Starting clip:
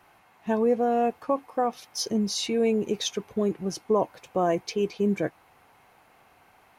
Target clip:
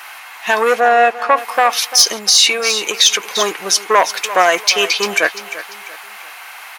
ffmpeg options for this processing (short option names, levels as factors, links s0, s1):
-filter_complex "[0:a]asoftclip=type=tanh:threshold=0.141,asettb=1/sr,asplit=3[s0][s1][s2];[s0]atrim=end=2.114[s3];[s1]atrim=start=2.11:end=3.33,asetpts=PTS-STARTPTS,afade=t=in:d=0.004:c=qsin,afade=t=out:st=1.216:d=0.004:c=qsin,acompressor=threshold=0.0398:ratio=6[s4];[s2]atrim=start=3.326[s5];[s3][s4]acrossfade=d=0.004:c1=hsin:c2=qsin[s6];[s6][s5]acrossfade=d=0.004:c1=qsin:c2=hsin,highpass=1500,aeval=exprs='0.119*(cos(1*acos(clip(val(0)/0.119,-1,1)))-cos(1*PI/2))+0.0266*(cos(5*acos(clip(val(0)/0.119,-1,1)))-cos(5*PI/2))+0.0133*(cos(7*acos(clip(val(0)/0.119,-1,1)))-cos(7*PI/2))':c=same,asplit=3[s7][s8][s9];[s7]afade=t=out:st=0.79:d=0.02[s10];[s8]aemphasis=mode=reproduction:type=75kf,afade=t=in:st=0.79:d=0.02,afade=t=out:st=1.36:d=0.02[s11];[s9]afade=t=in:st=1.36:d=0.02[s12];[s10][s11][s12]amix=inputs=3:normalize=0,asplit=2[s13][s14];[s14]aecho=0:1:344|688|1032:0.158|0.0602|0.0229[s15];[s13][s15]amix=inputs=2:normalize=0,alimiter=level_in=25.1:limit=0.891:release=50:level=0:latency=1,volume=0.891"